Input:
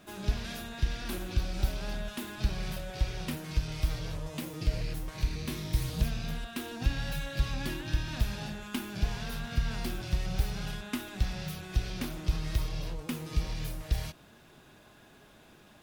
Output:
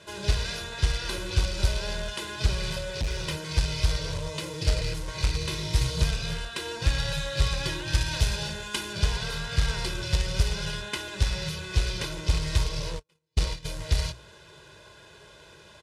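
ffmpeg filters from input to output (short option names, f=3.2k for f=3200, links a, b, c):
-filter_complex "[0:a]highpass=f=46:w=0.5412,highpass=f=46:w=1.3066,bandreject=f=60:t=h:w=6,bandreject=f=120:t=h:w=6,bandreject=f=180:t=h:w=6,bandreject=f=240:t=h:w=6,bandreject=f=300:t=h:w=6,bandreject=f=360:t=h:w=6,aecho=1:1:2:0.99,acrusher=bits=3:mode=log:mix=0:aa=0.000001,lowpass=f=10k:w=0.5412,lowpass=f=10k:w=1.3066,asettb=1/sr,asplit=3[a][b][c];[a]atrim=end=2.894[d];[b]atrim=start=2.89:end=3.42,asetpts=PTS-STARTPTS,afade=t=in:d=0.004:c=qsin,afade=t=out:st=0.526:d=0.004:c=qsin,asoftclip=type=hard:threshold=-27dB[e];[c]atrim=start=3.416[f];[d][e]acrossfade=d=0.004:c1=hsin:c2=qsin[g];[g][f]acrossfade=d=0.004:c1=qsin:c2=hsin,asettb=1/sr,asplit=3[h][i][j];[h]atrim=end=7.924[k];[i]atrim=start=7.92:end=8.93,asetpts=PTS-STARTPTS,afade=t=in:d=0.004:c=qsin,afade=t=out:st=1.006:d=0.004:c=qsin,highshelf=f=6.4k:g=5.5[l];[j]atrim=start=8.926[m];[k][l]acrossfade=d=0.004:c1=hsin:c2=qsin[n];[n][m]acrossfade=d=0.004:c1=qsin:c2=hsin,asplit=3[o][p][q];[o]afade=t=out:st=12.98:d=0.02[r];[p]agate=range=-47dB:threshold=-31dB:ratio=16:detection=peak,afade=t=in:st=12.98:d=0.02,afade=t=out:st=13.64:d=0.02[s];[q]afade=t=in:st=13.64:d=0.02[t];[r][s][t]amix=inputs=3:normalize=0,equalizer=f=4.4k:t=o:w=1.2:g=4.5,volume=3dB"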